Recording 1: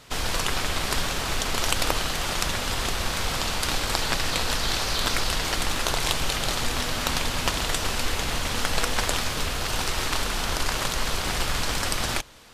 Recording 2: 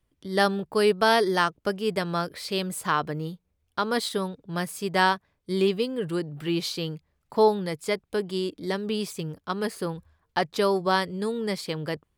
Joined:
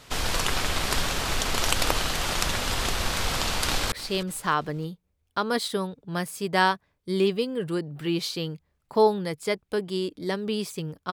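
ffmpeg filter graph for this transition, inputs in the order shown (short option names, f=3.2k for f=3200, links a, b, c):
-filter_complex "[0:a]apad=whole_dur=11.12,atrim=end=11.12,atrim=end=3.922[a];[1:a]atrim=start=2.328:end=9.53[b];[a][b]acrossfade=d=0.004:c1=hsin:c2=hsin,asplit=2[c][d];[d]afade=t=in:st=3.65:d=0.01,afade=t=out:st=3.92:d=0.01,aecho=0:1:310|620|930:0.149624|0.0598494|0.0239398[e];[c][e]amix=inputs=2:normalize=0"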